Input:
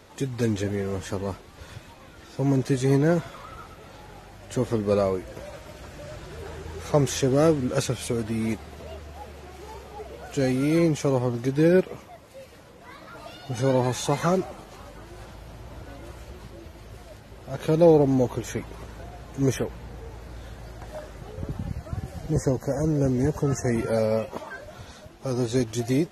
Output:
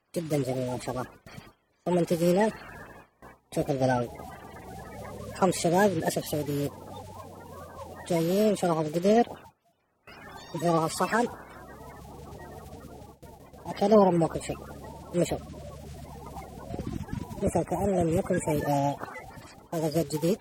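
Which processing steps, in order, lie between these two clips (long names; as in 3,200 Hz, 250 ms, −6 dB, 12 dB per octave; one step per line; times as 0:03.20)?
spectral magnitudes quantised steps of 30 dB
speed change +28%
noise gate with hold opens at −34 dBFS
level −2 dB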